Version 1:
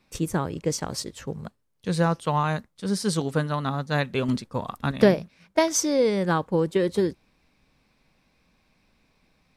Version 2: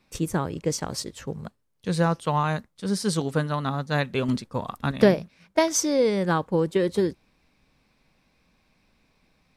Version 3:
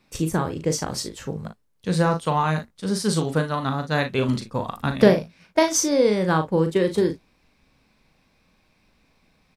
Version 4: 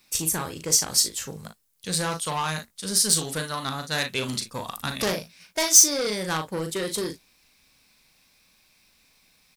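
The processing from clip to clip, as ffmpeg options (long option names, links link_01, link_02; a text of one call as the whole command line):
ffmpeg -i in.wav -af anull out.wav
ffmpeg -i in.wav -af "aecho=1:1:38|56:0.422|0.168,volume=2dB" out.wav
ffmpeg -i in.wav -af "asoftclip=type=tanh:threshold=-16dB,crystalizer=i=9.5:c=0,volume=-8dB" out.wav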